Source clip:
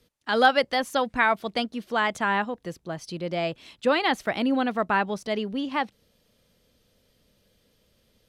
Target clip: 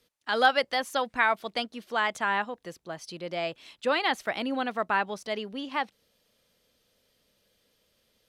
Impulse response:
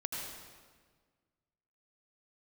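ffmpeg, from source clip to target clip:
-af "lowshelf=f=310:g=-11,volume=-1.5dB"

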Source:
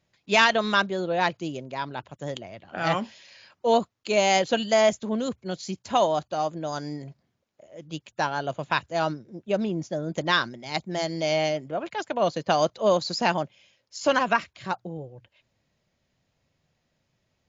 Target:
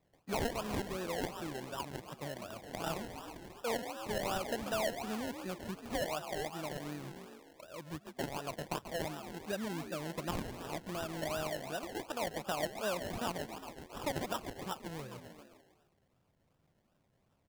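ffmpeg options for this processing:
-filter_complex "[0:a]asplit=7[a][b][c][d][e][f][g];[b]adelay=136,afreqshift=46,volume=-11dB[h];[c]adelay=272,afreqshift=92,volume=-16.4dB[i];[d]adelay=408,afreqshift=138,volume=-21.7dB[j];[e]adelay=544,afreqshift=184,volume=-27.1dB[k];[f]adelay=680,afreqshift=230,volume=-32.4dB[l];[g]adelay=816,afreqshift=276,volume=-37.8dB[m];[a][h][i][j][k][l][m]amix=inputs=7:normalize=0,acrusher=samples=29:mix=1:aa=0.000001:lfo=1:lforange=17.4:lforate=2.7,acompressor=threshold=-43dB:ratio=2,volume=-1.5dB"

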